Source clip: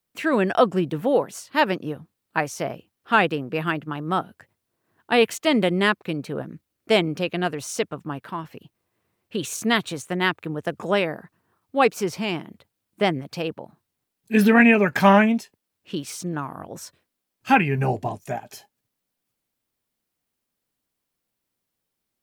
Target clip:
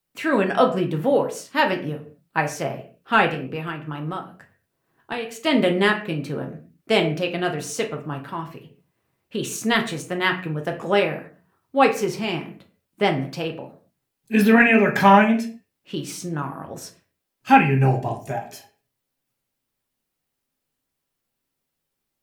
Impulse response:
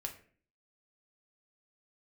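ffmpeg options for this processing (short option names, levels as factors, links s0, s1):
-filter_complex "[0:a]asettb=1/sr,asplit=3[s0][s1][s2];[s0]atrim=end=3.274[s3];[s1]atrim=start=3.27:end=5.44,asetpts=PTS-STARTPTS,afade=t=in:d=0.004:c=qsin,afade=t=out:st=2.166:d=0.004:c=qsin,acompressor=threshold=0.0447:ratio=6[s4];[s2]atrim=start=5.436[s5];[s3][s4]acrossfade=d=0.004:c1=hsin:c2=qsin[s6];[s6][s5]acrossfade=d=0.004:c1=qsin:c2=hsin[s7];[1:a]atrim=start_sample=2205,afade=t=out:st=0.3:d=0.01,atrim=end_sample=13671[s8];[s7][s8]afir=irnorm=-1:irlink=0,volume=1.33"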